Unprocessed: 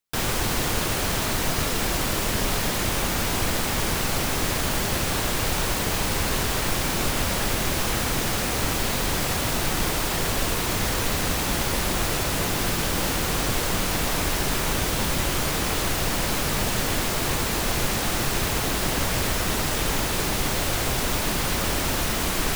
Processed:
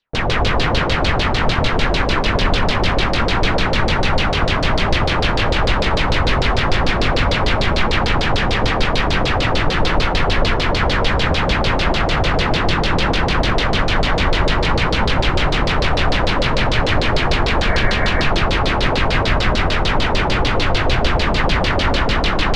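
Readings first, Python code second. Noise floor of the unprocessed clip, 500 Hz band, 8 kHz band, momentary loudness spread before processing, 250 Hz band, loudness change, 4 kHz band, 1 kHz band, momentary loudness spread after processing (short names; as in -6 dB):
-26 dBFS, +9.0 dB, -10.0 dB, 0 LU, +7.0 dB, +6.5 dB, +7.0 dB, +9.5 dB, 1 LU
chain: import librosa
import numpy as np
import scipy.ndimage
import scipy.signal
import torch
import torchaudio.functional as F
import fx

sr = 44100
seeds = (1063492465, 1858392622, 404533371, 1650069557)

p1 = np.repeat(x[::3], 3)[:len(x)]
p2 = fx.low_shelf(p1, sr, hz=140.0, db=7.0)
p3 = fx.filter_lfo_lowpass(p2, sr, shape='saw_down', hz=6.7, low_hz=450.0, high_hz=4600.0, q=3.5)
p4 = p3 + fx.echo_feedback(p3, sr, ms=170, feedback_pct=40, wet_db=-4.5, dry=0)
p5 = fx.spec_repair(p4, sr, seeds[0], start_s=17.65, length_s=0.56, low_hz=770.0, high_hz=2300.0, source='after')
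y = p5 * 10.0 ** (3.0 / 20.0)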